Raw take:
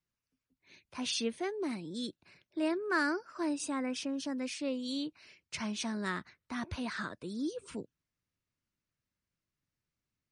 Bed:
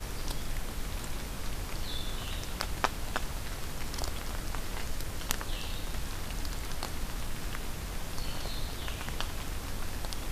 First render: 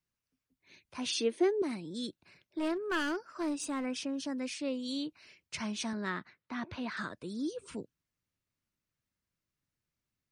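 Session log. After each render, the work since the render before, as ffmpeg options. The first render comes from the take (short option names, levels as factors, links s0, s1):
-filter_complex "[0:a]asettb=1/sr,asplit=3[s0][s1][s2];[s0]atrim=end=1.094[s3];[s1]atrim=start=1.09:end=1.62,asetpts=PTS-STARTPTS,afade=t=in:d=0.004:c=qsin,afade=t=out:st=0.526:d=0.004:c=qsin,highpass=f=330:t=q:w=3.6[s4];[s2]atrim=start=1.616[s5];[s3][s4]acrossfade=d=0.004:c1=hsin:c2=qsin[s6];[s6][s5]acrossfade=d=0.004:c1=qsin:c2=hsin,asplit=3[s7][s8][s9];[s7]afade=t=out:st=2.58:d=0.02[s10];[s8]aeval=exprs='clip(val(0),-1,0.0237)':c=same,afade=t=in:st=2.58:d=0.02,afade=t=out:st=3.84:d=0.02[s11];[s9]afade=t=in:st=3.84:d=0.02[s12];[s10][s11][s12]amix=inputs=3:normalize=0,asettb=1/sr,asplit=3[s13][s14][s15];[s13]atrim=end=5.934[s16];[s14]atrim=start=5.93:end=6.97,asetpts=PTS-STARTPTS,afade=t=in:d=0.004:c=qsin,afade=t=out:st=1.036:d=0.004:c=qsin,highpass=130,lowpass=4000[s17];[s15]atrim=start=6.966[s18];[s16][s17]acrossfade=d=0.004:c1=hsin:c2=qsin[s19];[s19][s18]acrossfade=d=0.004:c1=qsin:c2=hsin"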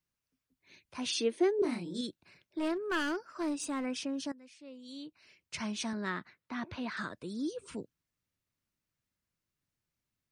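-filter_complex "[0:a]asettb=1/sr,asplit=3[s0][s1][s2];[s0]atrim=end=1.564[s3];[s1]atrim=start=1.56:end=2.01,asetpts=PTS-STARTPTS,afade=t=in:d=0.004:c=qsin,afade=t=out:st=0.446:d=0.004:c=qsin,asplit=2[s4][s5];[s5]adelay=29,volume=0.75[s6];[s4][s6]amix=inputs=2:normalize=0,atrim=end_sample=19845[s7];[s2]atrim=start=2.006[s8];[s3][s7]acrossfade=d=0.004:c1=hsin:c2=qsin[s9];[s9][s8]acrossfade=d=0.004:c1=qsin:c2=hsin,asplit=2[s10][s11];[s10]atrim=end=4.32,asetpts=PTS-STARTPTS,afade=t=out:st=4.316:d=0.004:c=hsin:silence=0.112202[s12];[s11]atrim=start=4.32,asetpts=PTS-STARTPTS,afade=t=in:d=1.28:c=qua:silence=0.112202[s13];[s12][s13]concat=n=2:v=0:a=1"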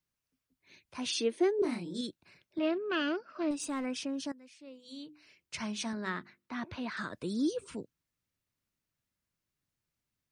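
-filter_complex "[0:a]asettb=1/sr,asplit=3[s0][s1][s2];[s0]atrim=end=2.584[s3];[s1]atrim=start=2.58:end=3.51,asetpts=PTS-STARTPTS,afade=t=in:d=0.004:c=qsin,afade=t=out:st=0.926:d=0.004:c=qsin,highpass=150,equalizer=f=170:t=q:w=4:g=5,equalizer=f=240:t=q:w=4:g=8,equalizer=f=610:t=q:w=4:g=6,equalizer=f=940:t=q:w=4:g=-6,equalizer=f=1800:t=q:w=4:g=-3,equalizer=f=2700:t=q:w=4:g=7,lowpass=f=4400:w=0.5412,lowpass=f=4400:w=1.3066[s4];[s2]atrim=start=3.506[s5];[s3][s4]acrossfade=d=0.004:c1=hsin:c2=qsin[s6];[s6][s5]acrossfade=d=0.004:c1=qsin:c2=hsin,asettb=1/sr,asplit=3[s7][s8][s9];[s7]atrim=end=4.654[s10];[s8]atrim=start=4.65:end=6.53,asetpts=PTS-STARTPTS,afade=t=in:d=0.004:c=qsin,afade=t=out:st=1.876:d=0.004:c=qsin,bandreject=f=50:t=h:w=6,bandreject=f=100:t=h:w=6,bandreject=f=150:t=h:w=6,bandreject=f=200:t=h:w=6,bandreject=f=250:t=h:w=6,bandreject=f=300:t=h:w=6,bandreject=f=350:t=h:w=6,bandreject=f=400:t=h:w=6[s11];[s9]atrim=start=6.526[s12];[s10][s11]acrossfade=d=0.004:c1=hsin:c2=qsin[s13];[s13][s12]acrossfade=d=0.004:c1=qsin:c2=hsin,asplit=3[s14][s15][s16];[s14]afade=t=out:st=7.12:d=0.02[s17];[s15]acontrast=28,afade=t=in:st=7.12:d=0.02,afade=t=out:st=7.63:d=0.02[s18];[s16]afade=t=in:st=7.63:d=0.02[s19];[s17][s18][s19]amix=inputs=3:normalize=0"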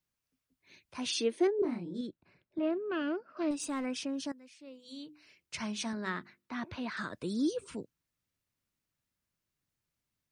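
-filter_complex "[0:a]asettb=1/sr,asplit=3[s0][s1][s2];[s0]atrim=end=1.474[s3];[s1]atrim=start=1.47:end=3.37,asetpts=PTS-STARTPTS,afade=t=in:d=0.004:c=qsin,afade=t=out:st=1.896:d=0.004:c=qsin,lowpass=f=1000:p=1[s4];[s2]atrim=start=3.366[s5];[s3][s4]acrossfade=d=0.004:c1=hsin:c2=qsin[s6];[s6][s5]acrossfade=d=0.004:c1=qsin:c2=hsin"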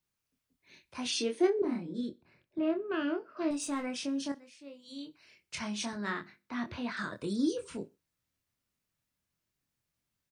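-filter_complex "[0:a]asplit=2[s0][s1];[s1]adelay=25,volume=0.562[s2];[s0][s2]amix=inputs=2:normalize=0,aecho=1:1:62|124:0.0708|0.0241"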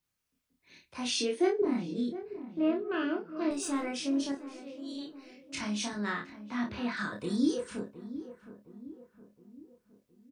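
-filter_complex "[0:a]asplit=2[s0][s1];[s1]adelay=29,volume=0.668[s2];[s0][s2]amix=inputs=2:normalize=0,asplit=2[s3][s4];[s4]adelay=715,lowpass=f=990:p=1,volume=0.237,asplit=2[s5][s6];[s6]adelay=715,lowpass=f=990:p=1,volume=0.52,asplit=2[s7][s8];[s8]adelay=715,lowpass=f=990:p=1,volume=0.52,asplit=2[s9][s10];[s10]adelay=715,lowpass=f=990:p=1,volume=0.52,asplit=2[s11][s12];[s12]adelay=715,lowpass=f=990:p=1,volume=0.52[s13];[s3][s5][s7][s9][s11][s13]amix=inputs=6:normalize=0"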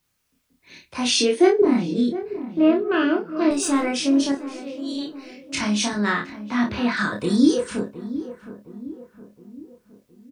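-af "volume=3.76"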